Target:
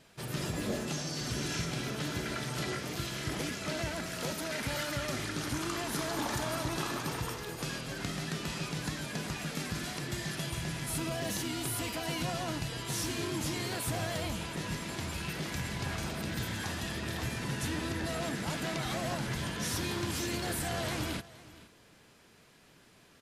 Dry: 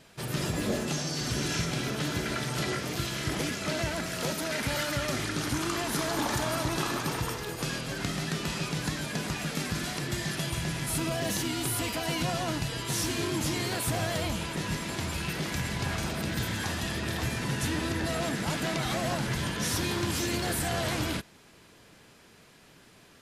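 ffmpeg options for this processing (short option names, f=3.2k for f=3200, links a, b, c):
-af "aecho=1:1:469:0.112,volume=-4.5dB"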